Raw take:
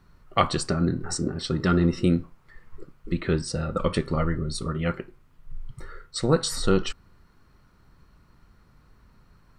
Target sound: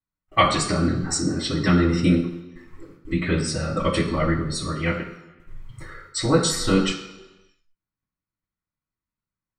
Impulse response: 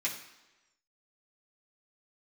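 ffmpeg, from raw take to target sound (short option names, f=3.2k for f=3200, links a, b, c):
-filter_complex "[0:a]agate=range=-37dB:threshold=-46dB:ratio=16:detection=peak[a];[1:a]atrim=start_sample=2205,asetrate=43218,aresample=44100[b];[a][b]afir=irnorm=-1:irlink=0,volume=1.5dB"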